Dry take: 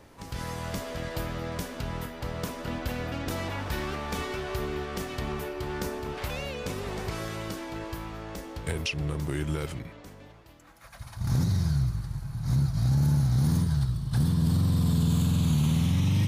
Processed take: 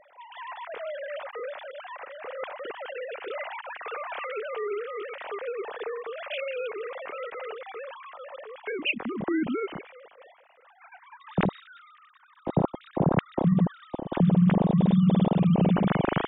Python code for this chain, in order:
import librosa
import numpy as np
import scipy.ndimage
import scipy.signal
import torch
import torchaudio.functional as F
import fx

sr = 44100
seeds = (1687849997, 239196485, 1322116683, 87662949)

y = fx.sine_speech(x, sr)